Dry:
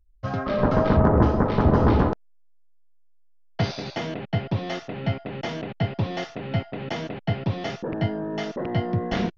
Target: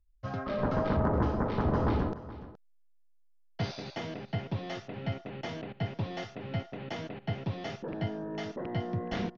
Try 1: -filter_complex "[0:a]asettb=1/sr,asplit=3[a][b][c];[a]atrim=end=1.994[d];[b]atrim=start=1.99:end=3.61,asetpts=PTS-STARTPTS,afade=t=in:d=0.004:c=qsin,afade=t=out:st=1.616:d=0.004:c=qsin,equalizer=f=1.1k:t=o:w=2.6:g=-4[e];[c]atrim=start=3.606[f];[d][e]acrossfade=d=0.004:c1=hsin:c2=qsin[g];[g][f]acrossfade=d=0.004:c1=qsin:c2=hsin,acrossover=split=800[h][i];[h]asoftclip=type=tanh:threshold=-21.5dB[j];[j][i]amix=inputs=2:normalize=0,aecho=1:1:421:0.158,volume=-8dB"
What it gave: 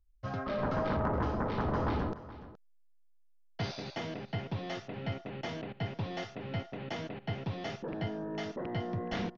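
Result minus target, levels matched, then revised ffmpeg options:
soft clip: distortion +10 dB
-filter_complex "[0:a]asettb=1/sr,asplit=3[a][b][c];[a]atrim=end=1.994[d];[b]atrim=start=1.99:end=3.61,asetpts=PTS-STARTPTS,afade=t=in:d=0.004:c=qsin,afade=t=out:st=1.616:d=0.004:c=qsin,equalizer=f=1.1k:t=o:w=2.6:g=-4[e];[c]atrim=start=3.606[f];[d][e]acrossfade=d=0.004:c1=hsin:c2=qsin[g];[g][f]acrossfade=d=0.004:c1=qsin:c2=hsin,acrossover=split=800[h][i];[h]asoftclip=type=tanh:threshold=-12.5dB[j];[j][i]amix=inputs=2:normalize=0,aecho=1:1:421:0.158,volume=-8dB"

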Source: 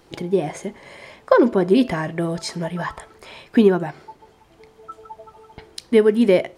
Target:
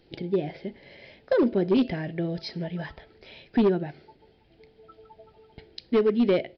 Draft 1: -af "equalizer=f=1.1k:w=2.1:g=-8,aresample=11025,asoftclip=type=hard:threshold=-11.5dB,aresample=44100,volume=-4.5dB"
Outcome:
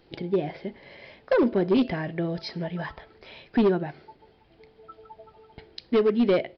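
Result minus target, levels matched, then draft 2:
1000 Hz band +2.5 dB
-af "equalizer=f=1.1k:w=2.1:g=-19,aresample=11025,asoftclip=type=hard:threshold=-11.5dB,aresample=44100,volume=-4.5dB"

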